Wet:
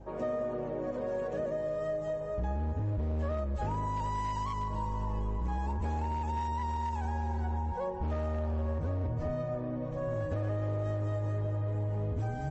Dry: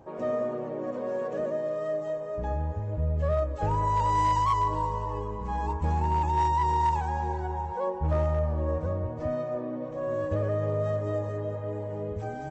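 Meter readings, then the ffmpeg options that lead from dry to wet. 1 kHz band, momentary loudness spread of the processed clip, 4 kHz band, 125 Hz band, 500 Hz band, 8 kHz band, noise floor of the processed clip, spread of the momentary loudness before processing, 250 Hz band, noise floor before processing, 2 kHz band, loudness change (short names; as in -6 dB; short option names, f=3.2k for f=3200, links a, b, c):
-9.0 dB, 2 LU, -6.5 dB, -2.5 dB, -5.5 dB, n/a, -37 dBFS, 9 LU, -2.5 dB, -36 dBFS, -4.5 dB, -5.0 dB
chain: -filter_complex "[0:a]asubboost=boost=5:cutoff=140,acrossover=split=490|680[a][b][c];[a]volume=28dB,asoftclip=hard,volume=-28dB[d];[d][b][c]amix=inputs=3:normalize=0,aeval=exprs='val(0)+0.00316*(sin(2*PI*50*n/s)+sin(2*PI*2*50*n/s)/2+sin(2*PI*3*50*n/s)/3+sin(2*PI*4*50*n/s)/4+sin(2*PI*5*50*n/s)/5)':c=same,acompressor=threshold=-29dB:ratio=8,adynamicequalizer=threshold=0.00224:dfrequency=1100:dqfactor=5.3:tfrequency=1100:tqfactor=5.3:attack=5:release=100:ratio=0.375:range=2.5:mode=cutabove:tftype=bell" -ar 44100 -c:a libmp3lame -b:a 40k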